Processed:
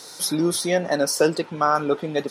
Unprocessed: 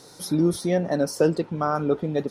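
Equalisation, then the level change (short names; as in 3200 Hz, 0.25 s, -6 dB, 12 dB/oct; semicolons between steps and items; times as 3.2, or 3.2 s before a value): HPF 75 Hz; tilt shelf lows -5.5 dB, about 770 Hz; low shelf 110 Hz -11.5 dB; +4.5 dB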